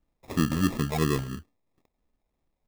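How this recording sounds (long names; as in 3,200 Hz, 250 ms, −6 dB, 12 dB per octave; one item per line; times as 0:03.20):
phaser sweep stages 12, 3 Hz, lowest notch 280–2,500 Hz
aliases and images of a low sample rate 1,500 Hz, jitter 0%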